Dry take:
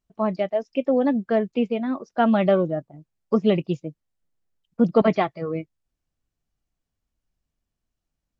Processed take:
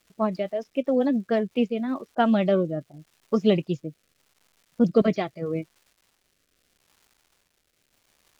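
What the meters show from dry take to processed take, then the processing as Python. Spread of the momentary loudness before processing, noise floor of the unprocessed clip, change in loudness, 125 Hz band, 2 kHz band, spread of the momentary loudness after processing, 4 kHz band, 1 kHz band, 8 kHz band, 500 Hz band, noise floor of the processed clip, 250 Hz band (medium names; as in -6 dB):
11 LU, -84 dBFS, -2.0 dB, -1.5 dB, -3.0 dB, 11 LU, +0.5 dB, -3.5 dB, no reading, -2.5 dB, -71 dBFS, -1.5 dB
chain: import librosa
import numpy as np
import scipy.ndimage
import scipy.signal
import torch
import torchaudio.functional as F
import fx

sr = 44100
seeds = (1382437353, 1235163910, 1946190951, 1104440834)

y = fx.env_lowpass(x, sr, base_hz=510.0, full_db=-17.0)
y = fx.bass_treble(y, sr, bass_db=0, treble_db=12)
y = fx.dmg_crackle(y, sr, seeds[0], per_s=500.0, level_db=-48.0)
y = fx.rotary_switch(y, sr, hz=7.5, then_hz=0.8, switch_at_s=1.01)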